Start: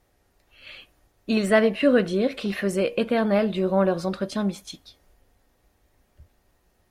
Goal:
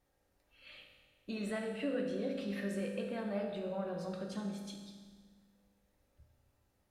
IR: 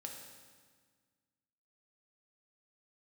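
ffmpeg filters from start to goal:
-filter_complex "[0:a]acompressor=threshold=-30dB:ratio=2[a];[1:a]atrim=start_sample=2205[b];[a][b]afir=irnorm=-1:irlink=0,volume=-7dB"

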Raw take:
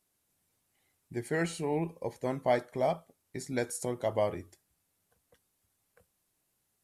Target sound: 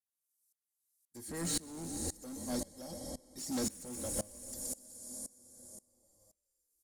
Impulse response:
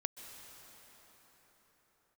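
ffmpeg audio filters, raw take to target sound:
-filter_complex "[0:a]acrossover=split=290[a][b];[b]acompressor=threshold=-44dB:ratio=6[c];[a][c]amix=inputs=2:normalize=0,aexciter=amount=15.8:drive=8.9:freq=4.2k,agate=range=-41dB:threshold=-36dB:ratio=16:detection=peak,asplit=7[d][e][f][g][h][i][j];[e]adelay=123,afreqshift=-41,volume=-11dB[k];[f]adelay=246,afreqshift=-82,volume=-16.4dB[l];[g]adelay=369,afreqshift=-123,volume=-21.7dB[m];[h]adelay=492,afreqshift=-164,volume=-27.1dB[n];[i]adelay=615,afreqshift=-205,volume=-32.4dB[o];[j]adelay=738,afreqshift=-246,volume=-37.8dB[p];[d][k][l][m][n][o][p]amix=inputs=7:normalize=0,asplit=2[q][r];[1:a]atrim=start_sample=2205[s];[r][s]afir=irnorm=-1:irlink=0,volume=-0.5dB[t];[q][t]amix=inputs=2:normalize=0,acrossover=split=2800[u][v];[v]acompressor=threshold=-38dB:ratio=4:attack=1:release=60[w];[u][w]amix=inputs=2:normalize=0,aecho=1:1:3.7:0.76,asoftclip=type=tanh:threshold=-32dB,aeval=exprs='val(0)*pow(10,-23*if(lt(mod(-1.9*n/s,1),2*abs(-1.9)/1000),1-mod(-1.9*n/s,1)/(2*abs(-1.9)/1000),(mod(-1.9*n/s,1)-2*abs(-1.9)/1000)/(1-2*abs(-1.9)/1000))/20)':c=same,volume=5dB"

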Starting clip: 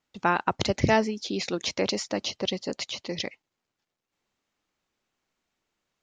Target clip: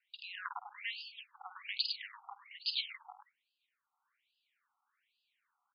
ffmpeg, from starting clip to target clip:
-filter_complex "[0:a]aecho=1:1:52.48|107.9:0.316|0.398,acrossover=split=340|4100[a][b][c];[b]acompressor=threshold=-40dB:ratio=5[d];[a][d][c]amix=inputs=3:normalize=0,asetrate=46305,aresample=44100,afftfilt=real='re*between(b*sr/1024,980*pow(3600/980,0.5+0.5*sin(2*PI*1.2*pts/sr))/1.41,980*pow(3600/980,0.5+0.5*sin(2*PI*1.2*pts/sr))*1.41)':imag='im*between(b*sr/1024,980*pow(3600/980,0.5+0.5*sin(2*PI*1.2*pts/sr))/1.41,980*pow(3600/980,0.5+0.5*sin(2*PI*1.2*pts/sr))*1.41)':win_size=1024:overlap=0.75,volume=4.5dB"

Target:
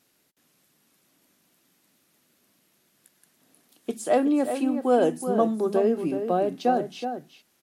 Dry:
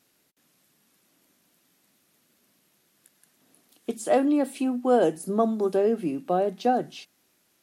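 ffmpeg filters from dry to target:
-filter_complex "[0:a]asplit=2[a][b];[b]adelay=373.2,volume=-8dB,highshelf=f=4k:g=-8.4[c];[a][c]amix=inputs=2:normalize=0"

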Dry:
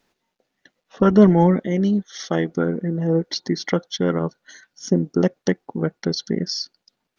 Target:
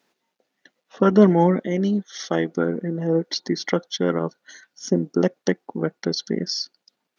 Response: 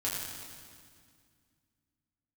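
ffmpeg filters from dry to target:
-af "highpass=190"

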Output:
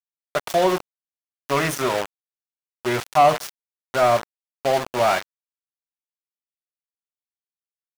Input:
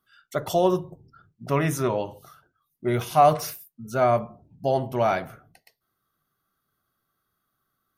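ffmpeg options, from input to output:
-filter_complex "[0:a]adynamicequalizer=threshold=0.0141:dfrequency=2200:dqfactor=1.2:tfrequency=2200:tqfactor=1.2:attack=5:release=100:ratio=0.375:range=1.5:mode=cutabove:tftype=bell,aeval=exprs='val(0)*gte(abs(val(0)),0.0473)':c=same,asplit=2[a][b];[b]highpass=f=720:p=1,volume=12dB,asoftclip=type=tanh:threshold=-6.5dB[c];[a][c]amix=inputs=2:normalize=0,lowpass=f=7.5k:p=1,volume=-6dB"

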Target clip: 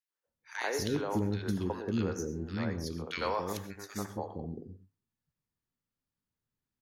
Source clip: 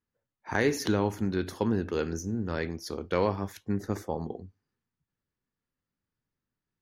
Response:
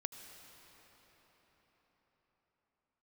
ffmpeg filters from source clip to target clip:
-filter_complex "[0:a]asettb=1/sr,asplit=3[a][b][c];[a]atrim=end=3.074[d];[b]atrim=start=3.07:end=4.06,asetpts=PTS-STARTPTS,afade=t=in:d=0.004:c=qsin,afade=t=out:st=0.986:d=0.004:c=qsin,tiltshelf=f=660:g=-7.5[e];[c]atrim=start=4.056[f];[d][e]acrossfade=d=0.004:c1=hsin:c2=qsin[g];[g][f]acrossfade=d=0.004:c1=qsin:c2=hsin,acrossover=split=420|1700[h][i][j];[i]adelay=90[k];[h]adelay=270[l];[l][k][j]amix=inputs=3:normalize=0[m];[1:a]atrim=start_sample=2205,atrim=end_sample=6174[n];[m][n]afir=irnorm=-1:irlink=0"

